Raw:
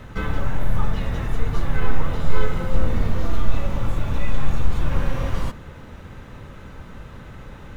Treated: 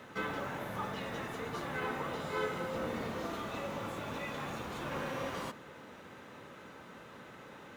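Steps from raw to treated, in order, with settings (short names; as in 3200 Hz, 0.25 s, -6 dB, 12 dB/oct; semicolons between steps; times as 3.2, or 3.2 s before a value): HPF 270 Hz 12 dB/oct; gain -5.5 dB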